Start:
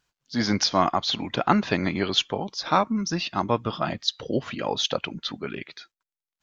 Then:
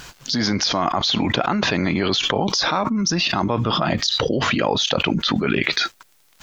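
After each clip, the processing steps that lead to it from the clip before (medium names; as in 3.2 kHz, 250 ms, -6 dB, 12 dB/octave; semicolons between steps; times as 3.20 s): level flattener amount 100%; trim -4.5 dB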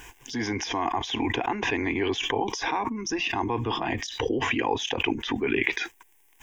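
static phaser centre 880 Hz, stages 8; trim -2.5 dB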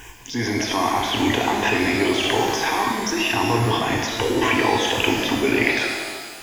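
pitch-shifted reverb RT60 1.7 s, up +12 st, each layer -8 dB, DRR 0.5 dB; trim +4 dB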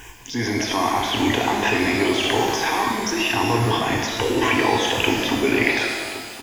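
delay 1077 ms -17.5 dB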